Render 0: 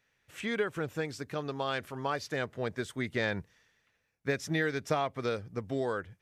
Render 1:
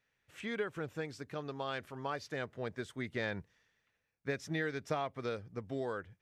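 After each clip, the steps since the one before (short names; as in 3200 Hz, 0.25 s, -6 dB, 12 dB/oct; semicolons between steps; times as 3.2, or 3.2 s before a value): high shelf 7700 Hz -6.5 dB; gain -5.5 dB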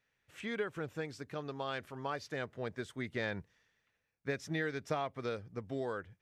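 nothing audible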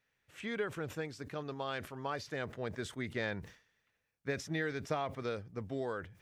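sustainer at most 130 dB/s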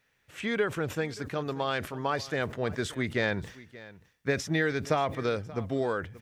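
echo 0.58 s -19 dB; gain +8.5 dB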